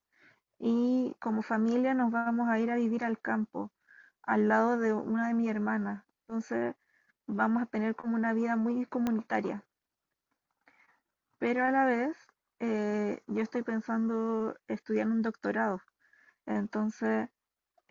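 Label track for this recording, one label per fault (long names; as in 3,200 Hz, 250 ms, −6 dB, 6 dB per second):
9.070000	9.070000	click −18 dBFS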